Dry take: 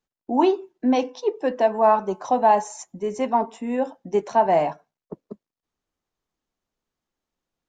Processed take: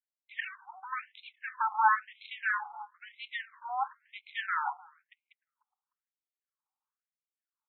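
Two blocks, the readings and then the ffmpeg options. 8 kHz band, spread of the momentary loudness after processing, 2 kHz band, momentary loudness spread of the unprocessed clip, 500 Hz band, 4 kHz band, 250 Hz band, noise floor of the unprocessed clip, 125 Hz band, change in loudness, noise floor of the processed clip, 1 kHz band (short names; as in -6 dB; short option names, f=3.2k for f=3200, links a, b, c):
under -35 dB, 20 LU, +4.0 dB, 10 LU, under -40 dB, -5.5 dB, under -40 dB, under -85 dBFS, under -40 dB, -11.0 dB, under -85 dBFS, -10.0 dB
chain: -filter_complex "[0:a]aeval=exprs='if(lt(val(0),0),0.251*val(0),val(0))':c=same,highshelf=f=7.2k:g=-11.5,asplit=2[a][b];[b]acompressor=threshold=-28dB:ratio=6,volume=2.5dB[c];[a][c]amix=inputs=2:normalize=0,asplit=2[d][e];[e]adelay=302,lowpass=f=1k:p=1,volume=-21.5dB,asplit=2[f][g];[g]adelay=302,lowpass=f=1k:p=1,volume=0.39,asplit=2[h][i];[i]adelay=302,lowpass=f=1k:p=1,volume=0.39[j];[d][f][h][j]amix=inputs=4:normalize=0,adynamicsmooth=sensitivity=7.5:basefreq=930,afftfilt=real='re*between(b*sr/1024,1000*pow(3000/1000,0.5+0.5*sin(2*PI*1*pts/sr))/1.41,1000*pow(3000/1000,0.5+0.5*sin(2*PI*1*pts/sr))*1.41)':imag='im*between(b*sr/1024,1000*pow(3000/1000,0.5+0.5*sin(2*PI*1*pts/sr))/1.41,1000*pow(3000/1000,0.5+0.5*sin(2*PI*1*pts/sr))*1.41)':win_size=1024:overlap=0.75"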